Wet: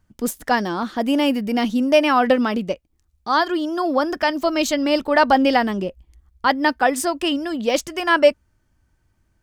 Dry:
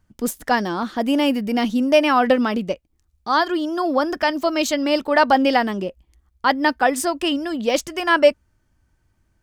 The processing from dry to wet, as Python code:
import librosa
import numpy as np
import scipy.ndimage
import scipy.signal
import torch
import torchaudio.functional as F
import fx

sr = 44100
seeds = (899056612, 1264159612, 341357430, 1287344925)

y = fx.low_shelf(x, sr, hz=110.0, db=8.0, at=(4.41, 6.47))